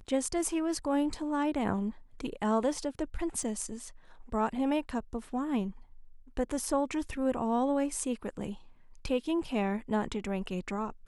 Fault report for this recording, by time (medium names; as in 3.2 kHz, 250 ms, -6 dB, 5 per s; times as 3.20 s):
3.43 s: dropout 2.1 ms